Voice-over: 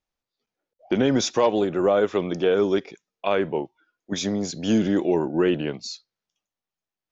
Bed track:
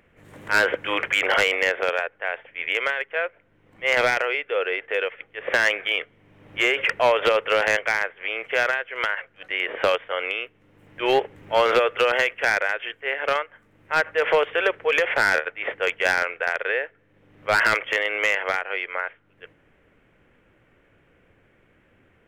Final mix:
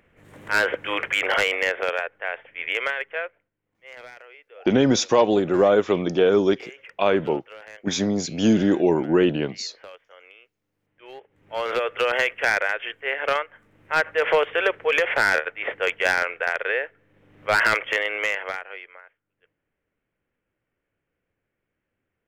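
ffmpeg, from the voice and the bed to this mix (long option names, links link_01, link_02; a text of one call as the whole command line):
ffmpeg -i stem1.wav -i stem2.wav -filter_complex "[0:a]adelay=3750,volume=2.5dB[link_01];[1:a]volume=21dB,afade=type=out:start_time=3.09:duration=0.42:silence=0.0891251,afade=type=in:start_time=11.27:duration=1.03:silence=0.0749894,afade=type=out:start_time=17.92:duration=1.09:silence=0.0944061[link_02];[link_01][link_02]amix=inputs=2:normalize=0" out.wav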